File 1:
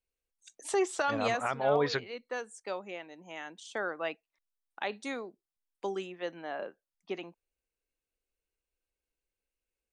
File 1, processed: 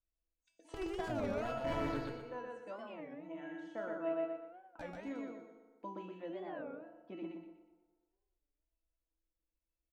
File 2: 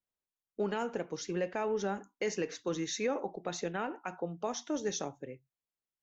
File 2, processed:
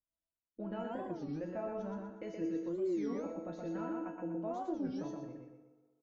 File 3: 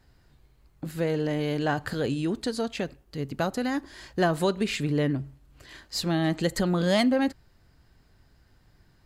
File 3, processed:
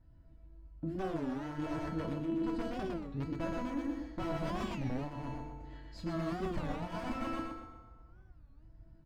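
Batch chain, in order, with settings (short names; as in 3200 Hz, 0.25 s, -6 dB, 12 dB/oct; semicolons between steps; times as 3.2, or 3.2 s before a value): wrapped overs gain 20 dB; tilt -3.5 dB/oct; resonator 330 Hz, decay 0.45 s, harmonics all, mix 90%; on a send: feedback echo 0.122 s, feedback 35%, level -3 dB; on the sum: FDN reverb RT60 1.7 s, low-frequency decay 0.75×, high-frequency decay 0.55×, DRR 8.5 dB; soft clip -14 dBFS; LPF 2900 Hz 6 dB/oct; notch comb 400 Hz; reverse; compressor 6:1, threshold -38 dBFS; reverse; record warp 33 1/3 rpm, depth 250 cents; gain +6 dB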